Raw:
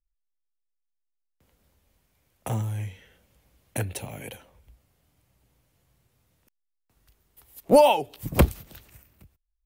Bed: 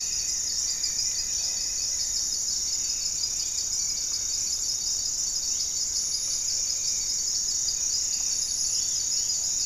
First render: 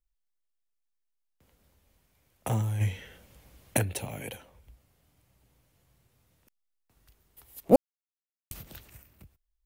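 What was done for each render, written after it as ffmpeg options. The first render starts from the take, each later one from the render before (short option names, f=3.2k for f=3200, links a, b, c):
-filter_complex "[0:a]asplit=3[a][b][c];[a]afade=t=out:st=2.8:d=0.02[d];[b]acontrast=87,afade=t=in:st=2.8:d=0.02,afade=t=out:st=3.77:d=0.02[e];[c]afade=t=in:st=3.77:d=0.02[f];[d][e][f]amix=inputs=3:normalize=0,asplit=3[g][h][i];[g]atrim=end=7.76,asetpts=PTS-STARTPTS,afade=t=out:st=7.756:d=0.004:c=hsin[j];[h]atrim=start=7.76:end=8.51,asetpts=PTS-STARTPTS,volume=0[k];[i]atrim=start=8.51,asetpts=PTS-STARTPTS,afade=t=in:d=0.004:c=hsin[l];[j][k][l]concat=n=3:v=0:a=1"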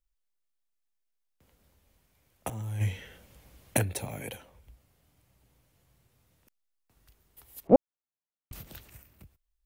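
-filter_complex "[0:a]asettb=1/sr,asplit=3[a][b][c];[a]atrim=end=3.884[d];[b]atrim=start=3.88:end=4.3,asetpts=PTS-STARTPTS,afade=t=in:d=0.004:c=qsin,afade=t=out:st=0.416:d=0.004:c=qsin,bandreject=f=2.9k:w=5.1[e];[c]atrim=start=4.296[f];[d][e]acrossfade=d=0.004:c1=hsin:c2=qsin[g];[g][f]acrossfade=d=0.004:c1=qsin:c2=hsin,asettb=1/sr,asplit=3[h][i][j];[h]atrim=end=7.674[k];[i]atrim=start=7.67:end=8.53,asetpts=PTS-STARTPTS,afade=t=in:d=0.004:c=qsin,afade=t=out:st=0.856:d=0.004:c=qsin,lowpass=1.6k[l];[j]atrim=start=8.526[m];[k][l]acrossfade=d=0.004:c1=hsin:c2=qsin[n];[n][m]acrossfade=d=0.004:c1=qsin:c2=hsin,asplit=2[o][p];[o]atrim=end=2.5,asetpts=PTS-STARTPTS,afade=t=out:st=2.496:d=0.004:c=hsin:silence=0.158489[q];[p]atrim=start=2.5,asetpts=PTS-STARTPTS,afade=t=in:d=0.4:silence=0.158489[r];[q][r]concat=n=2:v=0:a=1"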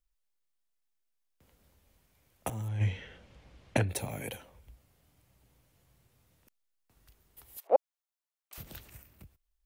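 -filter_complex "[0:a]asettb=1/sr,asplit=3[a][b][c];[a]atrim=end=2.684[d];[b]atrim=start=2.68:end=3.89,asetpts=PTS-STARTPTS,afade=t=in:d=0.004:c=qsin,afade=t=out:st=1.206:d=0.004:c=qsin,lowpass=4.5k[e];[c]atrim=start=3.886[f];[d][e]acrossfade=d=0.004:c1=hsin:c2=qsin[g];[g][f]acrossfade=d=0.004:c1=qsin:c2=hsin,asettb=1/sr,asplit=3[h][i][j];[h]atrim=end=7.574[k];[i]atrim=start=7.57:end=8.58,asetpts=PTS-STARTPTS,afade=t=in:d=0.004:c=qsin,afade=t=out:st=1.006:d=0.004:c=qsin,highpass=f=560:w=0.5412,highpass=f=560:w=1.3066[l];[j]atrim=start=8.576[m];[k][l]acrossfade=d=0.004:c1=hsin:c2=qsin[n];[n][m]acrossfade=d=0.004:c1=qsin:c2=hsin"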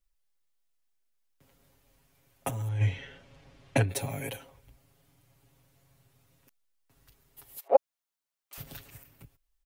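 -af "aecho=1:1:7.3:0.89"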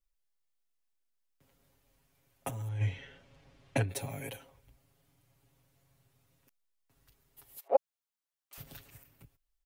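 -af "volume=-5dB"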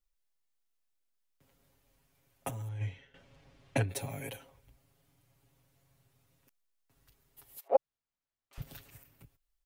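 -filter_complex "[0:a]asettb=1/sr,asplit=3[a][b][c];[a]atrim=end=7.764[d];[b]atrim=start=7.76:end=8.62,asetpts=PTS-STARTPTS,afade=t=in:d=0.004:c=qsin,afade=t=out:st=0.856:d=0.004:c=qsin,aemphasis=mode=reproduction:type=bsi[e];[c]atrim=start=8.616[f];[d][e]acrossfade=d=0.004:c1=hsin:c2=qsin[g];[g][f]acrossfade=d=0.004:c1=qsin:c2=hsin,asplit=2[h][i];[h]atrim=end=3.14,asetpts=PTS-STARTPTS,afade=t=out:st=2.49:d=0.65:silence=0.177828[j];[i]atrim=start=3.14,asetpts=PTS-STARTPTS,afade=t=in:d=0.004:c=hsin:silence=0.177828[k];[j][k]concat=n=2:v=0:a=1"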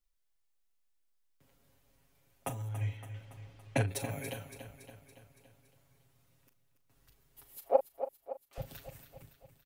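-filter_complex "[0:a]asplit=2[a][b];[b]adelay=39,volume=-12dB[c];[a][c]amix=inputs=2:normalize=0,aecho=1:1:282|564|846|1128|1410|1692:0.282|0.161|0.0916|0.0522|0.0298|0.017"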